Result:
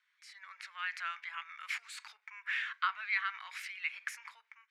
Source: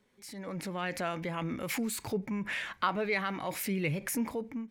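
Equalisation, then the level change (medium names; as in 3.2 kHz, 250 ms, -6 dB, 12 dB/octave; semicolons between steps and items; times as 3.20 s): steep high-pass 1.3 kHz 36 dB/octave; tape spacing loss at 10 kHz 23 dB; +5.5 dB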